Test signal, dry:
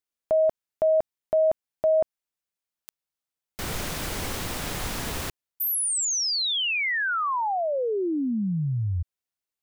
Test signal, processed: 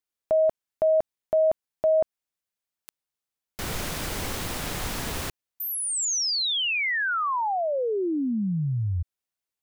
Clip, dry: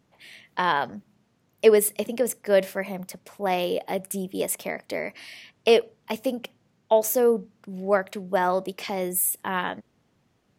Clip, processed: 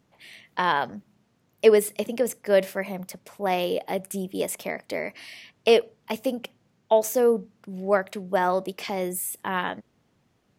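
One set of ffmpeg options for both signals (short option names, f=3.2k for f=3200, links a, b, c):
-filter_complex "[0:a]acrossover=split=7300[a][b];[b]acompressor=threshold=-30dB:ratio=4:attack=1:release=60[c];[a][c]amix=inputs=2:normalize=0"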